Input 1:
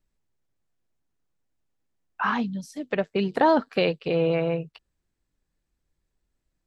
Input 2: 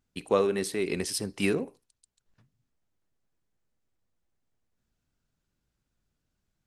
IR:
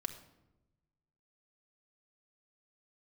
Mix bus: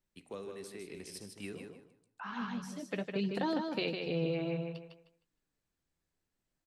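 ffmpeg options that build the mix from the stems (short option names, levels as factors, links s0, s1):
-filter_complex "[0:a]flanger=delay=5.5:depth=7:regen=-38:speed=0.58:shape=sinusoidal,lowshelf=f=100:g=-11,volume=0.944,asplit=2[s0][s1];[s1]volume=0.501[s2];[1:a]flanger=delay=9.2:depth=9.1:regen=89:speed=0.73:shape=sinusoidal,volume=0.266,asplit=3[s3][s4][s5];[s4]volume=0.473[s6];[s5]apad=whole_len=293878[s7];[s0][s7]sidechaincompress=threshold=0.00158:ratio=8:attack=6.7:release=940[s8];[s2][s6]amix=inputs=2:normalize=0,aecho=0:1:154|308|462|616:1|0.22|0.0484|0.0106[s9];[s8][s3][s9]amix=inputs=3:normalize=0,acrossover=split=290|3000[s10][s11][s12];[s11]acompressor=threshold=0.00447:ratio=2[s13];[s10][s13][s12]amix=inputs=3:normalize=0"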